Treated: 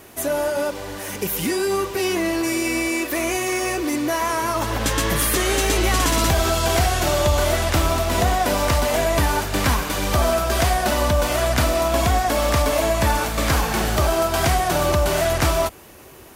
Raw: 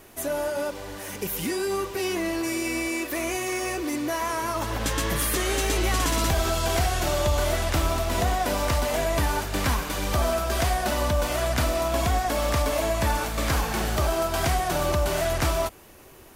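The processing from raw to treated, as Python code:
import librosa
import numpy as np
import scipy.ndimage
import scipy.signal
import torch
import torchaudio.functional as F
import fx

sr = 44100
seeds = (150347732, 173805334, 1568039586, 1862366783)

y = scipy.signal.sosfilt(scipy.signal.butter(2, 45.0, 'highpass', fs=sr, output='sos'), x)
y = y * 10.0 ** (5.5 / 20.0)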